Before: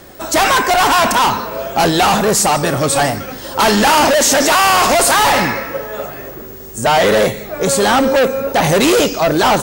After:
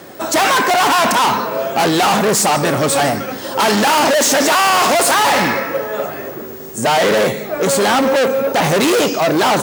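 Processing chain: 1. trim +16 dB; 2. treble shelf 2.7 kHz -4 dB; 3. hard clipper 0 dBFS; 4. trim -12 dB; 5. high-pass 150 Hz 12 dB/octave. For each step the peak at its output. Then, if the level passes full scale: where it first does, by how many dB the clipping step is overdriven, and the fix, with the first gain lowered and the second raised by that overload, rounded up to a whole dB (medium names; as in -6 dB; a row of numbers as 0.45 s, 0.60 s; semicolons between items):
+12.5 dBFS, +9.5 dBFS, 0.0 dBFS, -12.0 dBFS, -5.5 dBFS; step 1, 9.5 dB; step 1 +6 dB, step 4 -2 dB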